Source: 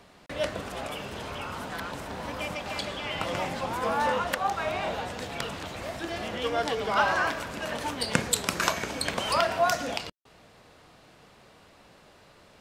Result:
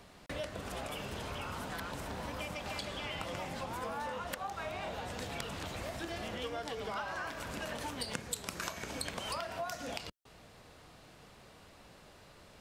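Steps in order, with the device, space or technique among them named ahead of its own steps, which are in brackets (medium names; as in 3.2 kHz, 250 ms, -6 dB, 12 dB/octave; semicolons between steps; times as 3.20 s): ASMR close-microphone chain (bass shelf 110 Hz +7 dB; compression 6:1, threshold -34 dBFS, peak gain reduction 16 dB; treble shelf 6.1 kHz +5 dB); trim -3 dB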